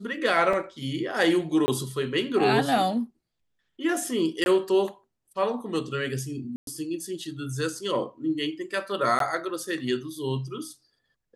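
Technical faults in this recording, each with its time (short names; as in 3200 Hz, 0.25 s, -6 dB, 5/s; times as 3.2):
0.53 gap 3.9 ms
1.66–1.68 gap 20 ms
4.44–4.46 gap 21 ms
6.56–6.67 gap 0.112 s
9.19–9.2 gap 13 ms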